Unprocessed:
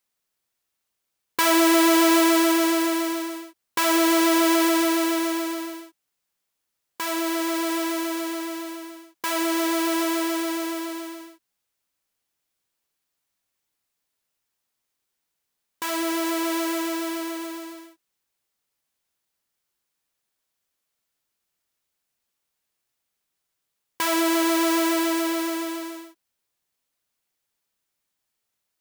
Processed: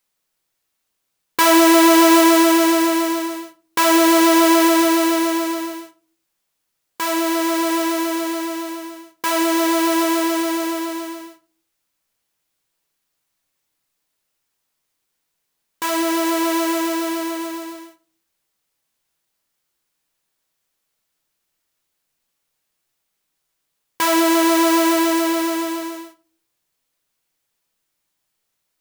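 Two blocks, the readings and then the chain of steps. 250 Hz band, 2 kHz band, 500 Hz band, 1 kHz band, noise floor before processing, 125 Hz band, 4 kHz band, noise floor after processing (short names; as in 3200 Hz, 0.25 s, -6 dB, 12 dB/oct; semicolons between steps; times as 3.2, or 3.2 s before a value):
+6.0 dB, +4.5 dB, +6.5 dB, +7.5 dB, -80 dBFS, n/a, +4.5 dB, -75 dBFS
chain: shoebox room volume 220 m³, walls furnished, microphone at 0.62 m; gain +4.5 dB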